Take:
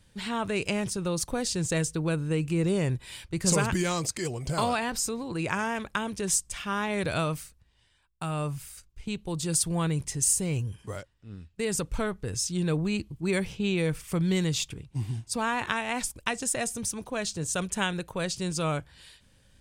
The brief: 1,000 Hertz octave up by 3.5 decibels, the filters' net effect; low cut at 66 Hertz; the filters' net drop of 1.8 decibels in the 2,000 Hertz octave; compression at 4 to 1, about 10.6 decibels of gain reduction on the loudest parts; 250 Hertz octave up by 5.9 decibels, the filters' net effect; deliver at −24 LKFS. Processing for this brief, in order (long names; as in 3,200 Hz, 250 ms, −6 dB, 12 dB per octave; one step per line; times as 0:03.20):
high-pass filter 66 Hz
parametric band 250 Hz +9 dB
parametric band 1,000 Hz +5 dB
parametric band 2,000 Hz −4.5 dB
downward compressor 4 to 1, threshold −30 dBFS
level +9.5 dB